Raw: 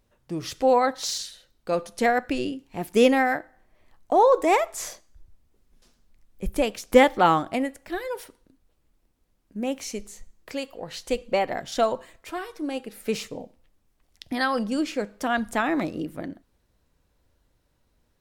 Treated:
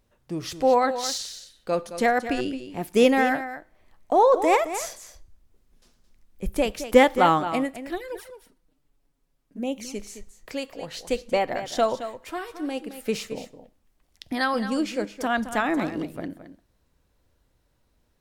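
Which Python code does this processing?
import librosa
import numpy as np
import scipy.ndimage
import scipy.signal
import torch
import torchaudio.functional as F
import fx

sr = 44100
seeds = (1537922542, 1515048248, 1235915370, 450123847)

y = x + 10.0 ** (-11.5 / 20.0) * np.pad(x, (int(218 * sr / 1000.0), 0))[:len(x)]
y = fx.env_flanger(y, sr, rest_ms=7.5, full_db=-25.5, at=(7.95, 9.94), fade=0.02)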